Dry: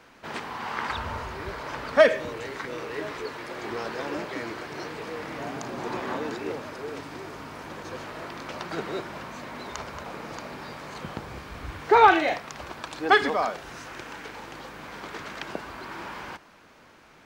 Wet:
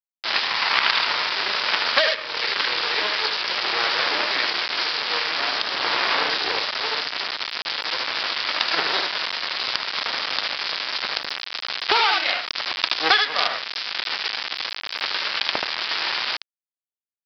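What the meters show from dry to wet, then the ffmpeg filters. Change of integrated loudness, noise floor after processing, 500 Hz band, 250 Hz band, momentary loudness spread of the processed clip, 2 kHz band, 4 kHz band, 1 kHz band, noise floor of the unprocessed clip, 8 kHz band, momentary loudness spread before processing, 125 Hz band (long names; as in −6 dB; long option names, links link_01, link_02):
+6.5 dB, below −85 dBFS, −4.5 dB, −6.5 dB, 8 LU, +8.5 dB, +19.0 dB, +1.5 dB, −54 dBFS, +4.5 dB, 18 LU, below −10 dB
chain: -filter_complex "[0:a]bass=frequency=250:gain=-11,treble=frequency=4000:gain=7,asplit=2[link_01][link_02];[link_02]aecho=0:1:25|75:0.188|0.596[link_03];[link_01][link_03]amix=inputs=2:normalize=0,aeval=exprs='sgn(val(0))*max(abs(val(0))-0.00631,0)':channel_layout=same,asplit=2[link_04][link_05];[link_05]adynamicsmooth=sensitivity=6:basefreq=720,volume=1dB[link_06];[link_04][link_06]amix=inputs=2:normalize=0,acrusher=bits=3:dc=4:mix=0:aa=0.000001,asoftclip=type=hard:threshold=-9dB,aderivative,acompressor=threshold=-34dB:ratio=20,aresample=11025,aresample=44100,alimiter=level_in=28dB:limit=-1dB:release=50:level=0:latency=1,volume=-1dB"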